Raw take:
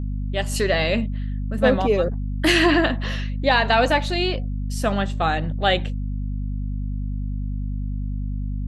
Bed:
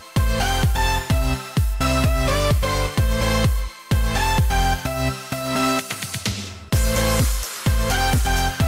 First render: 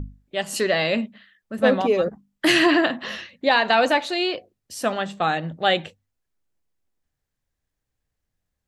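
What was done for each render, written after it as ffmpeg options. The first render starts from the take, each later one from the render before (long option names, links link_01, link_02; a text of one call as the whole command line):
ffmpeg -i in.wav -af "bandreject=frequency=50:width_type=h:width=6,bandreject=frequency=100:width_type=h:width=6,bandreject=frequency=150:width_type=h:width=6,bandreject=frequency=200:width_type=h:width=6,bandreject=frequency=250:width_type=h:width=6" out.wav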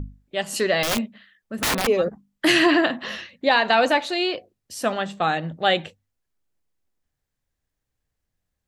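ffmpeg -i in.wav -filter_complex "[0:a]asettb=1/sr,asplit=3[link_01][link_02][link_03];[link_01]atrim=end=0.834[link_04];[link_02]atrim=start=0.83:end=1.87,asetpts=PTS-STARTPTS,afade=type=in:duration=0.004:curve=qsin,afade=type=out:start_time=1.036:duration=0.004:curve=qsin,aeval=exprs='(mod(7.08*val(0)+1,2)-1)/7.08':channel_layout=same[link_05];[link_03]atrim=start=1.866[link_06];[link_04][link_05]acrossfade=duration=0.004:curve1=hsin:curve2=qsin[link_07];[link_07][link_06]acrossfade=duration=0.004:curve1=qsin:curve2=hsin" out.wav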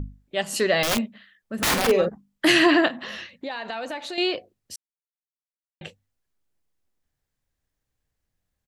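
ffmpeg -i in.wav -filter_complex "[0:a]asplit=3[link_01][link_02][link_03];[link_01]afade=type=out:start_time=1.59:duration=0.02[link_04];[link_02]asplit=2[link_05][link_06];[link_06]adelay=46,volume=-6.5dB[link_07];[link_05][link_07]amix=inputs=2:normalize=0,afade=type=in:start_time=1.59:duration=0.02,afade=type=out:start_time=2.05:duration=0.02[link_08];[link_03]afade=type=in:start_time=2.05:duration=0.02[link_09];[link_04][link_08][link_09]amix=inputs=3:normalize=0,asettb=1/sr,asplit=3[link_10][link_11][link_12];[link_10]atrim=end=2.884[link_13];[link_11]atrim=start=2.88:end=4.18,asetpts=PTS-STARTPTS,afade=type=in:duration=0.004:curve=qsin,afade=type=out:start_time=1.296:duration=0.004:curve=qsin,acompressor=threshold=-31dB:ratio=4:attack=3.2:release=140:knee=1:detection=peak[link_14];[link_12]atrim=start=4.176[link_15];[link_13][link_14]acrossfade=duration=0.004:curve1=hsin:curve2=qsin[link_16];[link_16][link_15]acrossfade=duration=0.004:curve1=qsin:curve2=hsin,asplit=3[link_17][link_18][link_19];[link_17]atrim=end=4.76,asetpts=PTS-STARTPTS,afade=type=out:start_time=4.756:duration=0.004:curve=hsin[link_20];[link_18]atrim=start=4.76:end=5.81,asetpts=PTS-STARTPTS,volume=0[link_21];[link_19]atrim=start=5.81,asetpts=PTS-STARTPTS,afade=type=in:duration=0.004:curve=hsin[link_22];[link_20][link_21][link_22]concat=n=3:v=0:a=1" out.wav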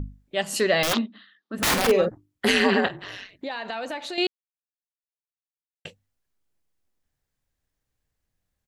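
ffmpeg -i in.wav -filter_complex "[0:a]asplit=3[link_01][link_02][link_03];[link_01]afade=type=out:start_time=0.92:duration=0.02[link_04];[link_02]highpass=frequency=210:width=0.5412,highpass=frequency=210:width=1.3066,equalizer=frequency=290:width_type=q:width=4:gain=9,equalizer=frequency=570:width_type=q:width=4:gain=-9,equalizer=frequency=1200:width_type=q:width=4:gain=6,equalizer=frequency=2300:width_type=q:width=4:gain=-8,equalizer=frequency=3800:width_type=q:width=4:gain=7,lowpass=frequency=4900:width=0.5412,lowpass=frequency=4900:width=1.3066,afade=type=in:start_time=0.92:duration=0.02,afade=type=out:start_time=1.55:duration=0.02[link_05];[link_03]afade=type=in:start_time=1.55:duration=0.02[link_06];[link_04][link_05][link_06]amix=inputs=3:normalize=0,asettb=1/sr,asplit=3[link_07][link_08][link_09];[link_07]atrim=end=2.114[link_10];[link_08]atrim=start=2.11:end=3.39,asetpts=PTS-STARTPTS,afade=type=in:duration=0.004:curve=qsin,afade=type=out:start_time=1.276:duration=0.004:curve=qsin,aeval=exprs='val(0)*sin(2*PI*96*n/s)':channel_layout=same[link_11];[link_09]atrim=start=3.386[link_12];[link_10][link_11]acrossfade=duration=0.004:curve1=hsin:curve2=qsin[link_13];[link_13][link_12]acrossfade=duration=0.004:curve1=qsin:curve2=hsin,asplit=3[link_14][link_15][link_16];[link_14]atrim=end=4.27,asetpts=PTS-STARTPTS,afade=type=out:start_time=4.266:duration=0.004:curve=hsin[link_17];[link_15]atrim=start=4.27:end=5.85,asetpts=PTS-STARTPTS,volume=0[link_18];[link_16]atrim=start=5.85,asetpts=PTS-STARTPTS,afade=type=in:duration=0.004:curve=hsin[link_19];[link_17][link_18][link_19]concat=n=3:v=0:a=1" out.wav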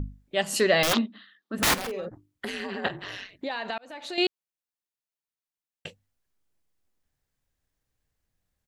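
ffmpeg -i in.wav -filter_complex "[0:a]asplit=3[link_01][link_02][link_03];[link_01]afade=type=out:start_time=1.73:duration=0.02[link_04];[link_02]acompressor=threshold=-31dB:ratio=6:attack=3.2:release=140:knee=1:detection=peak,afade=type=in:start_time=1.73:duration=0.02,afade=type=out:start_time=2.84:duration=0.02[link_05];[link_03]afade=type=in:start_time=2.84:duration=0.02[link_06];[link_04][link_05][link_06]amix=inputs=3:normalize=0,asplit=2[link_07][link_08];[link_07]atrim=end=3.78,asetpts=PTS-STARTPTS,afade=type=out:start_time=3.776:duration=0.004:curve=hsin[link_09];[link_08]atrim=start=3.78,asetpts=PTS-STARTPTS,afade=type=in:duration=0.43[link_10];[link_09][link_10]concat=n=2:v=0:a=1" out.wav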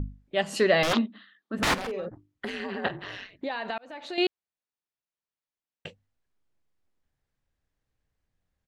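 ffmpeg -i in.wav -af "aemphasis=mode=reproduction:type=50fm" out.wav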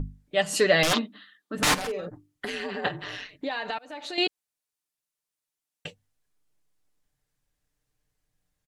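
ffmpeg -i in.wav -af "equalizer=frequency=10000:width_type=o:width=1.9:gain=9.5,aecho=1:1:6.7:0.44" out.wav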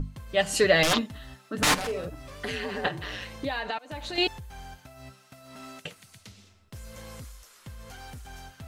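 ffmpeg -i in.wav -i bed.wav -filter_complex "[1:a]volume=-24.5dB[link_01];[0:a][link_01]amix=inputs=2:normalize=0" out.wav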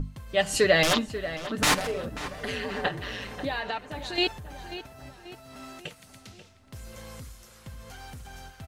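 ffmpeg -i in.wav -filter_complex "[0:a]asplit=2[link_01][link_02];[link_02]adelay=538,lowpass=frequency=2900:poles=1,volume=-12dB,asplit=2[link_03][link_04];[link_04]adelay=538,lowpass=frequency=2900:poles=1,volume=0.53,asplit=2[link_05][link_06];[link_06]adelay=538,lowpass=frequency=2900:poles=1,volume=0.53,asplit=2[link_07][link_08];[link_08]adelay=538,lowpass=frequency=2900:poles=1,volume=0.53,asplit=2[link_09][link_10];[link_10]adelay=538,lowpass=frequency=2900:poles=1,volume=0.53,asplit=2[link_11][link_12];[link_12]adelay=538,lowpass=frequency=2900:poles=1,volume=0.53[link_13];[link_01][link_03][link_05][link_07][link_09][link_11][link_13]amix=inputs=7:normalize=0" out.wav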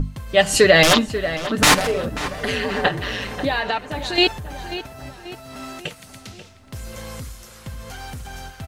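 ffmpeg -i in.wav -af "volume=9dB,alimiter=limit=-2dB:level=0:latency=1" out.wav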